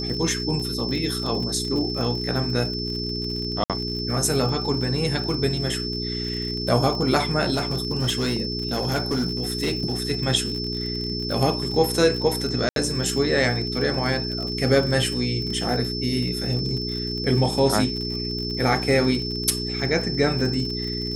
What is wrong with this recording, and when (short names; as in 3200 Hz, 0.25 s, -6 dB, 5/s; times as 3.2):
crackle 45/s -29 dBFS
hum 60 Hz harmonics 7 -30 dBFS
tone 5300 Hz -29 dBFS
3.64–3.7 gap 57 ms
7.54–10.07 clipped -18.5 dBFS
12.69–12.76 gap 72 ms